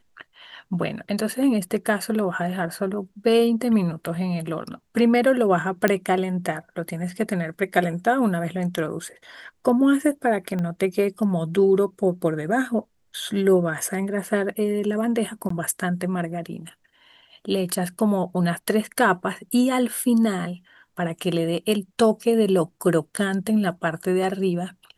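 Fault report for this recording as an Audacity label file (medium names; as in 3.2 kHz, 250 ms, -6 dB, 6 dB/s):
5.880000	5.880000	pop -7 dBFS
10.590000	10.590000	pop -18 dBFS
15.490000	15.500000	dropout 14 ms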